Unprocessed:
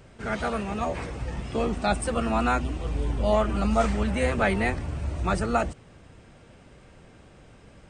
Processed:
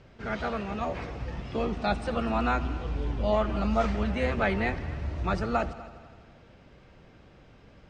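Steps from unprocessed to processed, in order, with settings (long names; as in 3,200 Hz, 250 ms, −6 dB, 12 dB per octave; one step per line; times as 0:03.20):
low-pass filter 5,600 Hz 24 dB per octave
echo machine with several playback heads 83 ms, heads all three, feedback 48%, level −21 dB
level −3 dB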